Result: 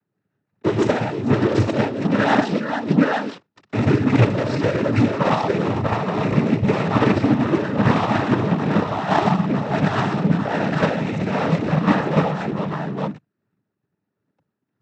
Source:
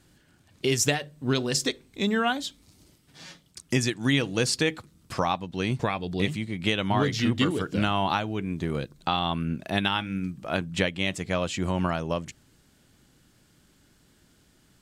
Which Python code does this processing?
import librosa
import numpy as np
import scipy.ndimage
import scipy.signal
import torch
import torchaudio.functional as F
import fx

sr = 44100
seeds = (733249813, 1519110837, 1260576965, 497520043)

p1 = scipy.ndimage.median_filter(x, 15, mode='constant')
p2 = p1 + fx.echo_multitap(p1, sr, ms=(59, 122, 463, 865, 889), db=(-5.5, -8.5, -10.5, -6.0, -13.0), dry=0)
p3 = fx.leveller(p2, sr, passes=5)
p4 = fx.bass_treble(p3, sr, bass_db=0, treble_db=-5)
p5 = fx.noise_vocoder(p4, sr, seeds[0], bands=12)
p6 = fx.level_steps(p5, sr, step_db=14)
p7 = p5 + (p6 * 10.0 ** (0.0 / 20.0))
p8 = fx.air_absorb(p7, sr, metres=100.0)
p9 = fx.am_noise(p8, sr, seeds[1], hz=5.7, depth_pct=55)
y = p9 * 10.0 ** (-4.0 / 20.0)